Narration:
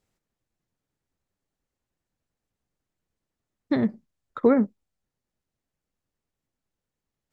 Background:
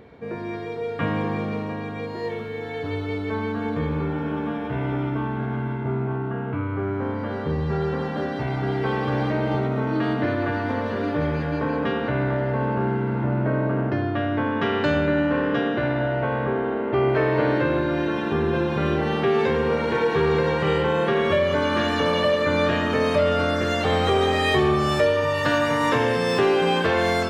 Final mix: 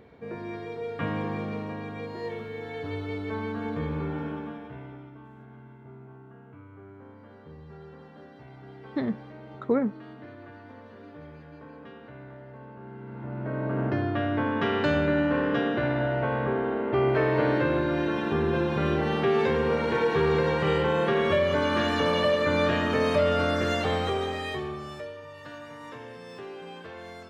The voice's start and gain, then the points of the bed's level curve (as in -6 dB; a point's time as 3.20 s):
5.25 s, -5.5 dB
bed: 4.22 s -5.5 dB
5.13 s -21.5 dB
12.79 s -21.5 dB
13.86 s -3 dB
23.72 s -3 dB
25.22 s -21.5 dB